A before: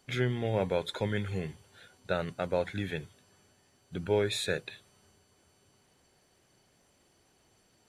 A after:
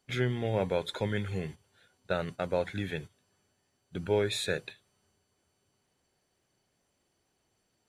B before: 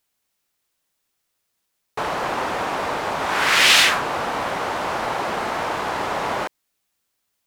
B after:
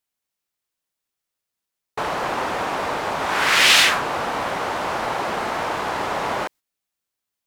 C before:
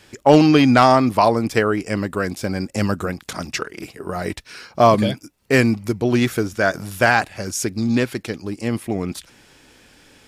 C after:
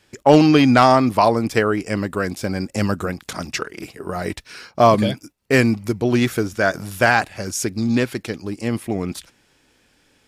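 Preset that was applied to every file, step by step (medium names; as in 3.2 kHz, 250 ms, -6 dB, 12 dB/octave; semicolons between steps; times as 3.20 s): gate -42 dBFS, range -9 dB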